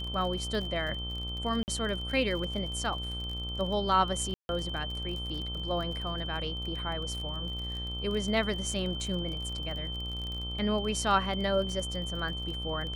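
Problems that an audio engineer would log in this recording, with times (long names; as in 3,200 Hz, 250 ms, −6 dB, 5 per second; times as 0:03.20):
mains buzz 60 Hz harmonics 23 −38 dBFS
surface crackle 32 per second −36 dBFS
whistle 3,100 Hz −37 dBFS
0:01.63–0:01.68: drop-out 49 ms
0:04.34–0:04.49: drop-out 151 ms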